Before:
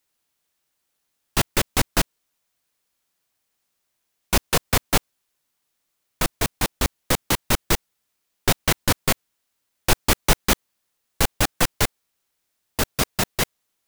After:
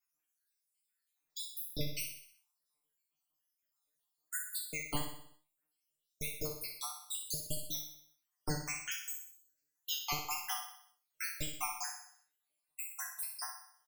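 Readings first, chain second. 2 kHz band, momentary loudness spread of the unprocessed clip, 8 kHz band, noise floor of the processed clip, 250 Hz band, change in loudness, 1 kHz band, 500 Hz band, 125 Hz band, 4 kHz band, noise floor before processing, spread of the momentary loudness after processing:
-18.0 dB, 7 LU, -14.5 dB, under -85 dBFS, -20.5 dB, -16.0 dB, -17.5 dB, -21.5 dB, -19.5 dB, -16.5 dB, -76 dBFS, 11 LU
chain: random spectral dropouts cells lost 80%; high shelf 6100 Hz +7 dB; in parallel at +2.5 dB: compressor, threshold -33 dBFS, peak gain reduction 17 dB; on the sum: resonator 150 Hz, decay 0.33 s, harmonics all, mix 100%; vibrato 6.4 Hz 41 cents; on a send: feedback echo 62 ms, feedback 52%, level -7.5 dB; on the sum: gain -3.5 dB

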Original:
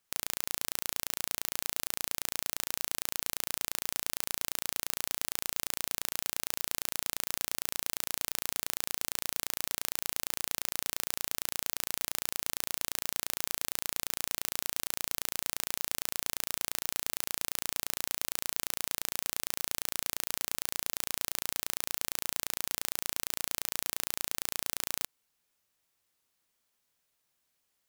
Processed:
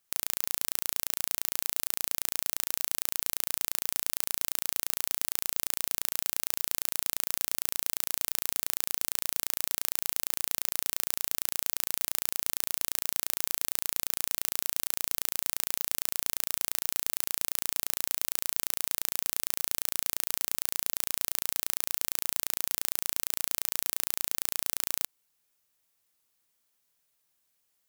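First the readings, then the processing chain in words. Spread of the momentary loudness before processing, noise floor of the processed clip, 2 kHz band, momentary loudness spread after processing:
0 LU, -75 dBFS, -0.5 dB, 0 LU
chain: high shelf 7600 Hz +6.5 dB; gain -1 dB

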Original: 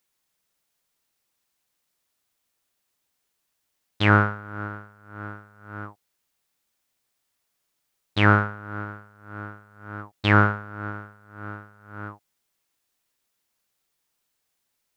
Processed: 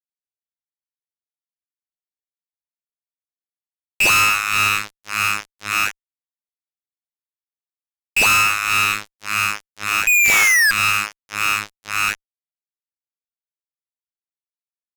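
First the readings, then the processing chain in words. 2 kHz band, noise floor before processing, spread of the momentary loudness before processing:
+11.0 dB, -77 dBFS, 22 LU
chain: painted sound rise, 10.07–10.71, 210–1100 Hz -14 dBFS; inverted band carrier 2700 Hz; fuzz box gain 40 dB, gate -40 dBFS

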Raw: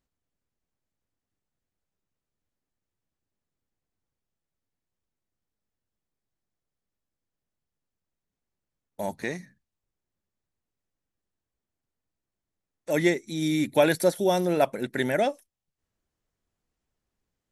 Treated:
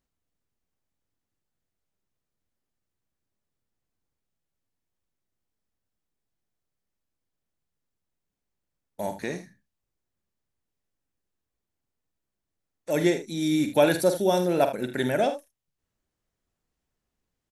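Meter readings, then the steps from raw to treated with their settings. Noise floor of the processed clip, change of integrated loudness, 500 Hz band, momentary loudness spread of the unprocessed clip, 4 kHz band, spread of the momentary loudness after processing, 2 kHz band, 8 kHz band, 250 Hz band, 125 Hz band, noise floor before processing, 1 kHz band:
-84 dBFS, +0.5 dB, +1.0 dB, 13 LU, +0.5 dB, 14 LU, -2.0 dB, +0.5 dB, +1.0 dB, 0.0 dB, under -85 dBFS, +0.5 dB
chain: dynamic EQ 2000 Hz, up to -7 dB, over -48 dBFS, Q 4.7; early reflections 48 ms -9.5 dB, 78 ms -13 dB

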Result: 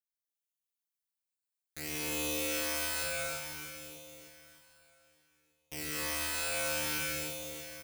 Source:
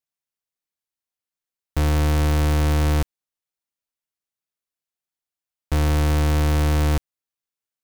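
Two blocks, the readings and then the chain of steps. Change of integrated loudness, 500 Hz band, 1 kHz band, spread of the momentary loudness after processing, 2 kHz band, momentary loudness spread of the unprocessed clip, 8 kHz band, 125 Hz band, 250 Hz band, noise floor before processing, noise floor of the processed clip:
-12.5 dB, -10.5 dB, -13.0 dB, 16 LU, -3.0 dB, 7 LU, +1.5 dB, -30.0 dB, -17.5 dB, under -85 dBFS, under -85 dBFS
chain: differentiator; on a send: feedback echo 0.311 s, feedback 59%, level -6 dB; on the sum: phaser stages 12, 0.59 Hz, lowest notch 310–1800 Hz; speakerphone echo 0.14 s, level -7 dB; in parallel at -7 dB: bit-crush 7-bit; on the sum: high shelf 2800 Hz -9 dB; non-linear reverb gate 0.38 s flat, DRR -6 dB

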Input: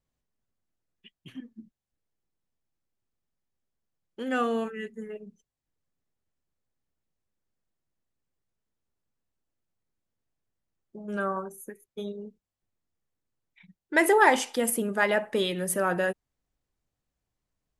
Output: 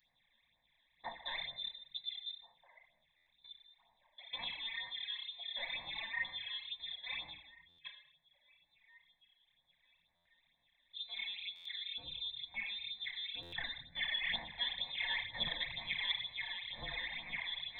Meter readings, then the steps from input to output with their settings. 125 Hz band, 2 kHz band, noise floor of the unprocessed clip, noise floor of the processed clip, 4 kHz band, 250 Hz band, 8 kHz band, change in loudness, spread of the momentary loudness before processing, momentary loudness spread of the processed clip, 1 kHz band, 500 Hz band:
n/a, -9.0 dB, under -85 dBFS, -78 dBFS, +5.0 dB, -28.5 dB, under -40 dB, -13.5 dB, 23 LU, 15 LU, -21.0 dB, -29.5 dB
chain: per-bin compression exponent 0.6; on a send: echo with dull and thin repeats by turns 0.688 s, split 1100 Hz, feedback 60%, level -5 dB; on the sum: level quantiser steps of 23 dB; HPF 55 Hz; reverse; compressor 5:1, threshold -41 dBFS, peak gain reduction 18.5 dB; reverse; inverted band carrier 3800 Hz; fixed phaser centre 2000 Hz, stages 8; spectral noise reduction 11 dB; shoebox room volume 230 m³, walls mixed, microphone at 0.98 m; phaser stages 12, 2.1 Hz, lowest notch 120–3000 Hz; stuck buffer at 3.16/7.68/10.15/11.55/13.42, samples 512, times 8; gain +9.5 dB

